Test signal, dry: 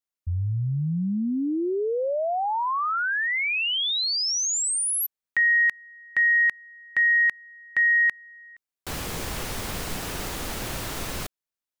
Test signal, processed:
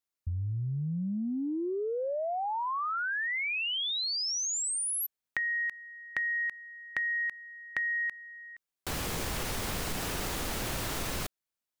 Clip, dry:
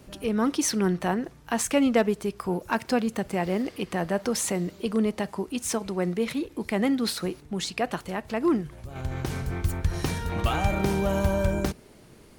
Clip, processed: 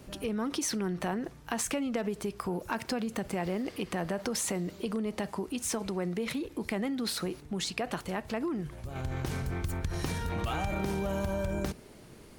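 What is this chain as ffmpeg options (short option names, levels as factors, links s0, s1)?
-af "acompressor=threshold=0.0178:ratio=6:attack=62:release=23:knee=6:detection=rms"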